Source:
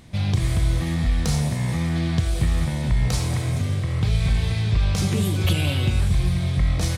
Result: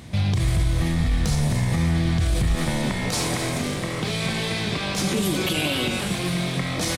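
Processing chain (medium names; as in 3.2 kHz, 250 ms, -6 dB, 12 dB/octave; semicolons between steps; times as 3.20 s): high-pass 47 Hz 24 dB/octave, from 2.55 s 190 Hz; peak limiter -21 dBFS, peak gain reduction 11 dB; frequency-shifting echo 260 ms, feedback 59%, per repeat -44 Hz, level -11.5 dB; trim +6.5 dB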